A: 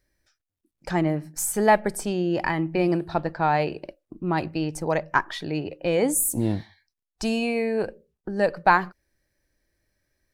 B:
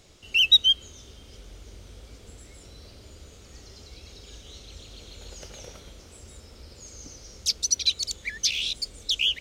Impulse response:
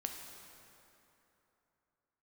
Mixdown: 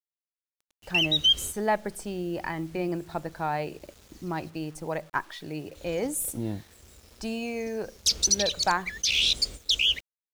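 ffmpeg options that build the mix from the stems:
-filter_complex "[0:a]volume=0.282,asplit=2[s0][s1];[1:a]agate=range=0.2:threshold=0.01:ratio=16:detection=peak,alimiter=limit=0.112:level=0:latency=1:release=16,adelay=600,volume=1.41,asplit=3[s2][s3][s4];[s2]atrim=end=4.5,asetpts=PTS-STARTPTS,afade=t=out:st=4.496:d=0.004:c=hsin[s5];[s3]atrim=start=4.5:end=5.75,asetpts=PTS-STARTPTS,volume=0[s6];[s4]atrim=start=5.75,asetpts=PTS-STARTPTS,afade=t=in:d=0.004:c=hsin[s7];[s5][s6][s7]concat=n=3:v=0:a=1[s8];[s1]apad=whole_len=441182[s9];[s8][s9]sidechaincompress=threshold=0.0178:ratio=8:attack=31:release=538[s10];[s0][s10]amix=inputs=2:normalize=0,dynaudnorm=f=100:g=17:m=1.5,acrusher=bits=8:mix=0:aa=0.000001"

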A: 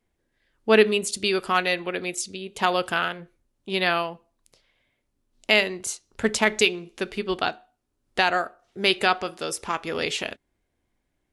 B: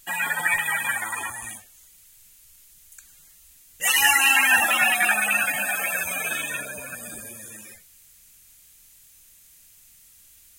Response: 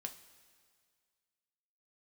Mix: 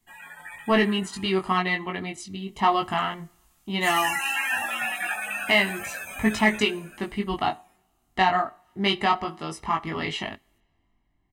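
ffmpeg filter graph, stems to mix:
-filter_complex "[0:a]highshelf=f=3500:g=-11,aecho=1:1:1:0.82,acontrast=64,volume=0.708,asplit=2[s0][s1];[s1]volume=0.133[s2];[1:a]volume=0.596,afade=t=in:st=2.2:d=0.69:silence=0.316228,afade=t=out:st=6.5:d=0.73:silence=0.251189[s3];[2:a]atrim=start_sample=2205[s4];[s2][s4]afir=irnorm=-1:irlink=0[s5];[s0][s3][s5]amix=inputs=3:normalize=0,highshelf=f=4800:g=-6.5,flanger=delay=19:depth=2.3:speed=0.31"

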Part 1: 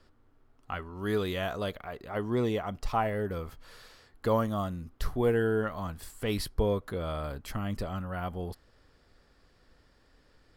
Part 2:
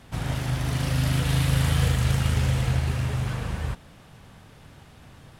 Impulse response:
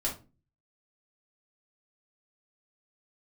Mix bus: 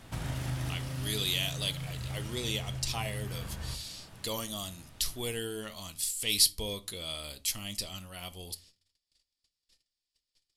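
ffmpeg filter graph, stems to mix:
-filter_complex "[0:a]lowpass=f=12000:w=0.5412,lowpass=f=12000:w=1.3066,agate=range=0.0355:threshold=0.00141:ratio=16:detection=peak,aexciter=amount=11.9:drive=4.9:freq=2300,volume=0.237,asplit=3[s0][s1][s2];[s1]volume=0.188[s3];[1:a]acompressor=threshold=0.0251:ratio=3,volume=0.596,asplit=2[s4][s5];[s5]volume=0.266[s6];[s2]apad=whole_len=237772[s7];[s4][s7]sidechaincompress=threshold=0.00562:ratio=8:attack=37:release=1060[s8];[2:a]atrim=start_sample=2205[s9];[s3][s6]amix=inputs=2:normalize=0[s10];[s10][s9]afir=irnorm=-1:irlink=0[s11];[s0][s8][s11]amix=inputs=3:normalize=0,highshelf=f=4800:g=5"

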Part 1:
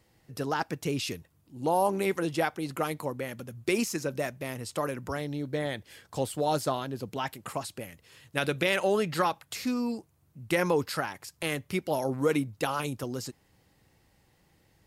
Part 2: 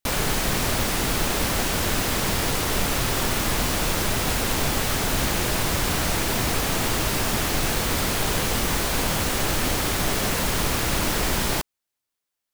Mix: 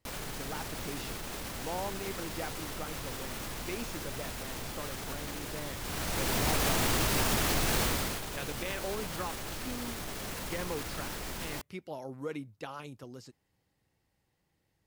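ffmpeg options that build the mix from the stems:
-filter_complex "[0:a]acrossover=split=6600[s0][s1];[s1]acompressor=threshold=0.00224:ratio=4:attack=1:release=60[s2];[s0][s2]amix=inputs=2:normalize=0,volume=0.251[s3];[1:a]alimiter=limit=0.126:level=0:latency=1:release=57,volume=0.944,afade=t=in:st=5.8:d=0.75:silence=0.266073,afade=t=out:st=7.8:d=0.41:silence=0.281838[s4];[s3][s4]amix=inputs=2:normalize=0"

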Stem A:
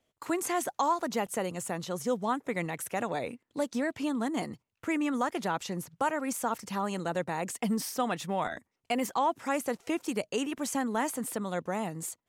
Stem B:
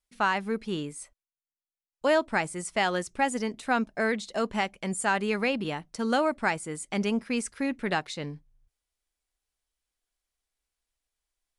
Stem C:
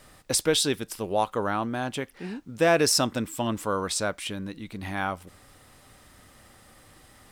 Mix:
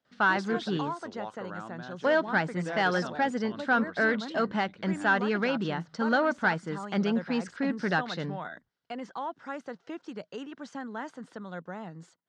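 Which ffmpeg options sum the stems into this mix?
-filter_complex "[0:a]volume=0.398[s0];[1:a]volume=1.06[s1];[2:a]adelay=50,volume=0.168[s2];[s0][s1][s2]amix=inputs=3:normalize=0,asoftclip=type=tanh:threshold=0.126,highpass=120,equalizer=f=170:t=q:w=4:g=6,equalizer=f=1500:t=q:w=4:g=8,equalizer=f=2400:t=q:w=4:g=-7,lowpass=f=5000:w=0.5412,lowpass=f=5000:w=1.3066"

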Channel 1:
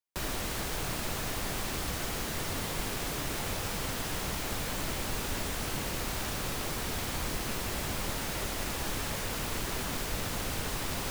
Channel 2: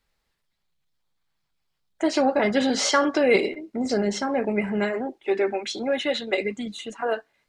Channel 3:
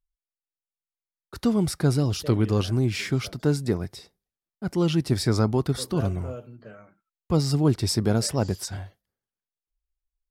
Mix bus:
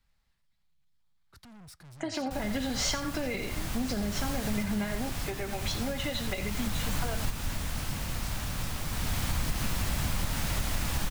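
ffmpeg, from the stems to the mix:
-filter_complex "[0:a]adelay=2150,volume=1.41[s0];[1:a]volume=0.708,asplit=2[s1][s2];[s2]volume=0.188[s3];[2:a]alimiter=limit=0.141:level=0:latency=1:release=33,asoftclip=type=hard:threshold=0.0224,volume=0.188,asplit=2[s4][s5];[s5]apad=whole_len=584474[s6];[s0][s6]sidechaincompress=threshold=0.00158:ratio=3:attack=16:release=691[s7];[s7][s1]amix=inputs=2:normalize=0,lowshelf=f=290:g=8,acompressor=threshold=0.0631:ratio=6,volume=1[s8];[s3]aecho=0:1:86:1[s9];[s4][s8][s9]amix=inputs=3:normalize=0,equalizer=f=400:t=o:w=0.95:g=-10.5,acrossover=split=380|3000[s10][s11][s12];[s11]acompressor=threshold=0.02:ratio=6[s13];[s10][s13][s12]amix=inputs=3:normalize=0"

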